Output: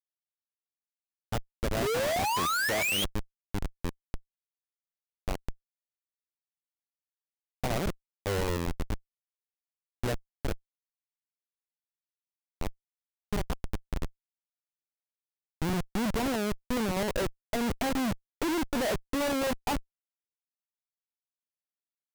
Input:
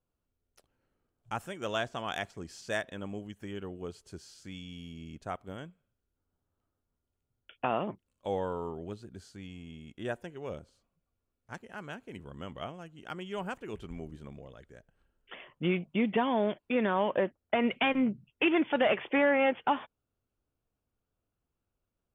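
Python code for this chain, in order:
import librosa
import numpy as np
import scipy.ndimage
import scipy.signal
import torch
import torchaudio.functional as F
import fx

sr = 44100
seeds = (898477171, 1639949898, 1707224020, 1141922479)

y = scipy.ndimage.median_filter(x, 25, mode='constant')
y = fx.spec_paint(y, sr, seeds[0], shape='rise', start_s=1.82, length_s=1.23, low_hz=380.0, high_hz=3400.0, level_db=-33.0)
y = fx.schmitt(y, sr, flips_db=-34.0)
y = y * 10.0 ** (7.5 / 20.0)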